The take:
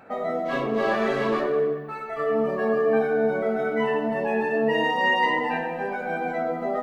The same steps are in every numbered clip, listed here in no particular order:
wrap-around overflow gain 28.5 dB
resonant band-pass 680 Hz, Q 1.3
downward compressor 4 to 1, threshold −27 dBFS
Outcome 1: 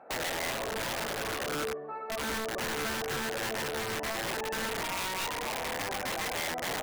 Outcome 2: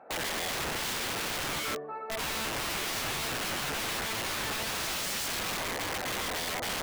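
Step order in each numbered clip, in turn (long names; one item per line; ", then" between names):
downward compressor, then resonant band-pass, then wrap-around overflow
resonant band-pass, then wrap-around overflow, then downward compressor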